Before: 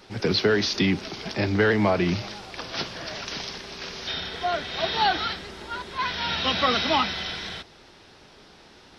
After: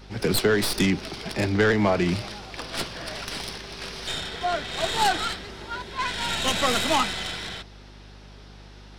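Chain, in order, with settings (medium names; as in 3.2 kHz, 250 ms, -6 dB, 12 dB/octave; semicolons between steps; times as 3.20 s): tracing distortion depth 0.098 ms; hum 50 Hz, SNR 20 dB; 5.75–6.75 s: band-stop 1.2 kHz, Q 8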